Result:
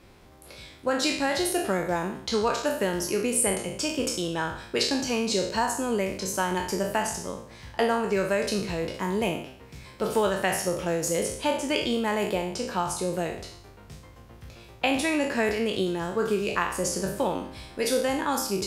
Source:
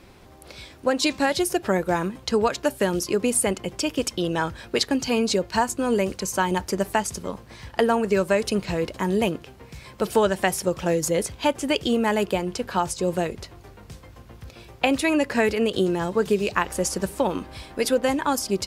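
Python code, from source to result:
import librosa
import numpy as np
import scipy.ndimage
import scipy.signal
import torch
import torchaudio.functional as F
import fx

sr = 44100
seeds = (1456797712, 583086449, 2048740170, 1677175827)

y = fx.spec_trails(x, sr, decay_s=0.62)
y = F.gain(torch.from_numpy(y), -5.5).numpy()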